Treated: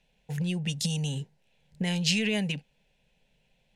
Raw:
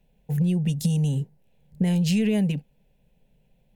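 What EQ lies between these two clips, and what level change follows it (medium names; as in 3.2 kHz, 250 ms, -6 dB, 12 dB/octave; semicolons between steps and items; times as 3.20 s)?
low-pass 6.3 kHz 12 dB/octave; tilt shelf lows -8.5 dB, about 880 Hz; 0.0 dB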